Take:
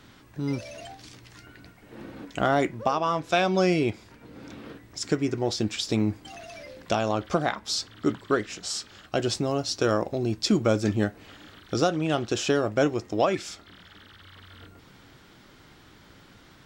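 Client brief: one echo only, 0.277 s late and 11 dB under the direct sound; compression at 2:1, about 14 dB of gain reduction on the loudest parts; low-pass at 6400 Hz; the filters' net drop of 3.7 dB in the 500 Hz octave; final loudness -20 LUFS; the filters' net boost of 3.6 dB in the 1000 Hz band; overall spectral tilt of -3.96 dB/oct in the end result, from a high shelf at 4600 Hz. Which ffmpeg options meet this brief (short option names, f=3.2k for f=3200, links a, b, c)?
-af "lowpass=6.4k,equalizer=f=500:t=o:g=-7.5,equalizer=f=1k:t=o:g=7.5,highshelf=f=4.6k:g=7.5,acompressor=threshold=-44dB:ratio=2,aecho=1:1:277:0.282,volume=19.5dB"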